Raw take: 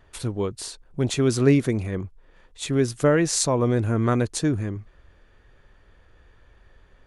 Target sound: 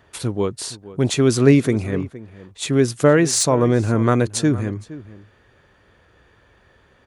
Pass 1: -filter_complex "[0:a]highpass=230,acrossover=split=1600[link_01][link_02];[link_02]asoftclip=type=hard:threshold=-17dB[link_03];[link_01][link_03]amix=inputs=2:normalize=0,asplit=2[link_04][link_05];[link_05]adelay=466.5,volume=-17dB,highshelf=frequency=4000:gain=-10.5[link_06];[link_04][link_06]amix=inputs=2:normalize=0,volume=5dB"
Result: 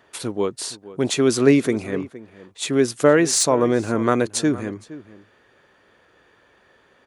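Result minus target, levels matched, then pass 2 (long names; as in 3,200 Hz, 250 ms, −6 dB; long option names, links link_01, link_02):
125 Hz band −7.5 dB
-filter_complex "[0:a]highpass=94,acrossover=split=1600[link_01][link_02];[link_02]asoftclip=type=hard:threshold=-17dB[link_03];[link_01][link_03]amix=inputs=2:normalize=0,asplit=2[link_04][link_05];[link_05]adelay=466.5,volume=-17dB,highshelf=frequency=4000:gain=-10.5[link_06];[link_04][link_06]amix=inputs=2:normalize=0,volume=5dB"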